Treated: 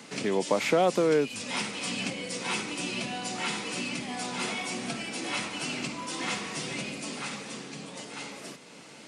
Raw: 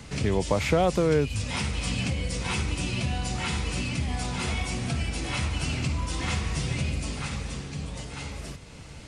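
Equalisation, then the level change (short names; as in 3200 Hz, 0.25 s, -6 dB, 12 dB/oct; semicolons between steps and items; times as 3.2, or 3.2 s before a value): HPF 210 Hz 24 dB/oct; 0.0 dB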